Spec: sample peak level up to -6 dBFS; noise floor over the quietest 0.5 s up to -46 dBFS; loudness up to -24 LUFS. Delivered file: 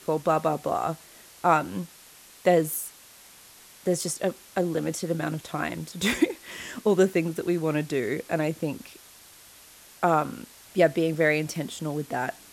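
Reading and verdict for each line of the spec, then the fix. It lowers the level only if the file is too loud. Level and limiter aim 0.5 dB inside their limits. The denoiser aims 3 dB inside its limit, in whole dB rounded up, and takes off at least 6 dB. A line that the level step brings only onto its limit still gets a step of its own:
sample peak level -7.0 dBFS: pass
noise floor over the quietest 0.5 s -51 dBFS: pass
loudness -26.5 LUFS: pass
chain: none needed

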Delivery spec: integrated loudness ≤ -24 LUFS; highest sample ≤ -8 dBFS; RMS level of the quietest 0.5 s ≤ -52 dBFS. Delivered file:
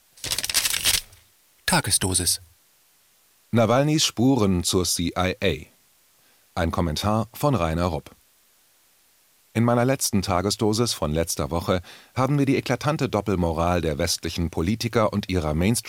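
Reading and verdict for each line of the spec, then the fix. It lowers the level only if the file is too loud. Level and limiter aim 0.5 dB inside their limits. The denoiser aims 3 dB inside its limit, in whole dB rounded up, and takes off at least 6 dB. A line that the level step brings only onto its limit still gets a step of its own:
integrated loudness -23.0 LUFS: fail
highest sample -7.0 dBFS: fail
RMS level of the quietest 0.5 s -60 dBFS: pass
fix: trim -1.5 dB

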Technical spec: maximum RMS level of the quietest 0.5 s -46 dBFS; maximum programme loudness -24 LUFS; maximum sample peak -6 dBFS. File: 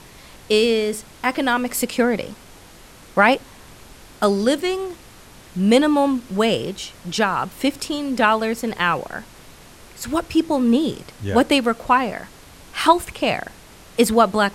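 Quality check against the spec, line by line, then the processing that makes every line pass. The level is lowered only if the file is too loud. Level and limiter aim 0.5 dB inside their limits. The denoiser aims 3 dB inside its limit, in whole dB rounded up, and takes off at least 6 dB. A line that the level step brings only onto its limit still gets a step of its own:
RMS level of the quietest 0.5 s -44 dBFS: fail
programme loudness -20.0 LUFS: fail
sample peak -1.5 dBFS: fail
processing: trim -4.5 dB; peak limiter -6.5 dBFS

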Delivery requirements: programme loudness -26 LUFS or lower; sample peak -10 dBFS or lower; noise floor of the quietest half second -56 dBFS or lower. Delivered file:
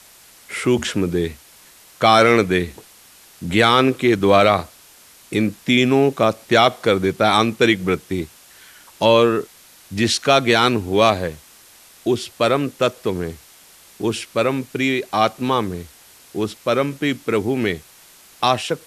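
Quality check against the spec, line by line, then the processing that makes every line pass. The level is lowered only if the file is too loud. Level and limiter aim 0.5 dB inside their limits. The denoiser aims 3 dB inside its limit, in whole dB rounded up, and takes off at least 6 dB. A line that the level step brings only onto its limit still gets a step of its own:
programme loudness -18.5 LUFS: fail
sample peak -1.5 dBFS: fail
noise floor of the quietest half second -48 dBFS: fail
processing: noise reduction 6 dB, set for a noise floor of -48 dBFS; trim -8 dB; peak limiter -10.5 dBFS

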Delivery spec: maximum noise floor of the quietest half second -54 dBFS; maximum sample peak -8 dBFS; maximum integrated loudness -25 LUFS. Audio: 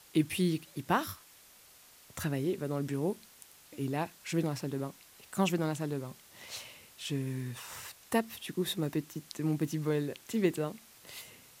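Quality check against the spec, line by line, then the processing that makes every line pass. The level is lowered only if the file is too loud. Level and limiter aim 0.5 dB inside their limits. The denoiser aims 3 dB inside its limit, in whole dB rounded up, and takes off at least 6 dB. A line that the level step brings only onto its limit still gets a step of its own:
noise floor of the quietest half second -58 dBFS: pass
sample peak -14.0 dBFS: pass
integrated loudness -34.5 LUFS: pass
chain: none needed

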